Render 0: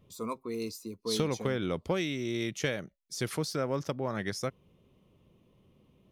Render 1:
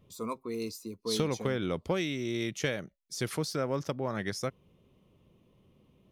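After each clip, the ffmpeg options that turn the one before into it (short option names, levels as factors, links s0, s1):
-af anull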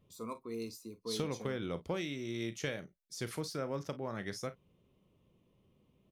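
-af "aecho=1:1:35|52:0.211|0.126,volume=0.473"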